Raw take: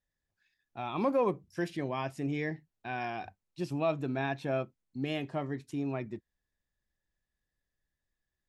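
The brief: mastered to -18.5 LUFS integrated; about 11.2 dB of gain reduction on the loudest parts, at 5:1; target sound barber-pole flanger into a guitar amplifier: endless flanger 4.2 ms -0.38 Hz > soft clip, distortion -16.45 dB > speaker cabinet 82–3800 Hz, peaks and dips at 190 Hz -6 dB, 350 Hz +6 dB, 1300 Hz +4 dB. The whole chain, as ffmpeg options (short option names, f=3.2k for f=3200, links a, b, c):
-filter_complex "[0:a]acompressor=threshold=-37dB:ratio=5,asplit=2[a][b];[b]adelay=4.2,afreqshift=-0.38[c];[a][c]amix=inputs=2:normalize=1,asoftclip=threshold=-36dB,highpass=82,equalizer=f=190:t=q:w=4:g=-6,equalizer=f=350:t=q:w=4:g=6,equalizer=f=1.3k:t=q:w=4:g=4,lowpass=f=3.8k:w=0.5412,lowpass=f=3.8k:w=1.3066,volume=27dB"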